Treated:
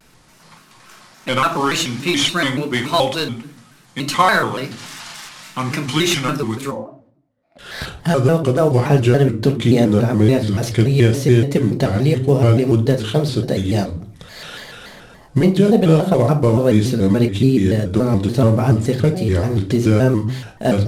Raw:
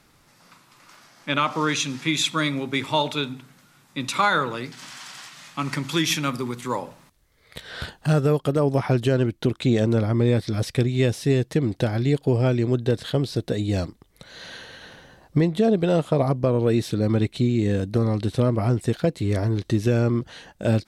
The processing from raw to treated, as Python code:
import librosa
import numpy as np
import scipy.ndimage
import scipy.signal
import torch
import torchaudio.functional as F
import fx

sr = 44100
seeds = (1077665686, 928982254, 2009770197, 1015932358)

y = fx.cvsd(x, sr, bps=64000)
y = fx.double_bandpass(y, sr, hz=420.0, octaves=1.1, at=(6.7, 7.59), fade=0.02)
y = fx.room_shoebox(y, sr, seeds[0], volume_m3=440.0, walls='furnished', distance_m=1.2)
y = fx.vibrato_shape(y, sr, shape='square', rate_hz=3.5, depth_cents=160.0)
y = y * 10.0 ** (5.0 / 20.0)